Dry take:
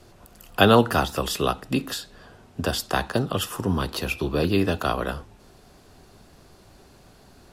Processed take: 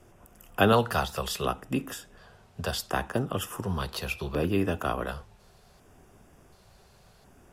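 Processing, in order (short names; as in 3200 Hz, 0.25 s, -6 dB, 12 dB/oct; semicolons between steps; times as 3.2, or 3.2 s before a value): LFO notch square 0.69 Hz 290–4200 Hz; gain -4.5 dB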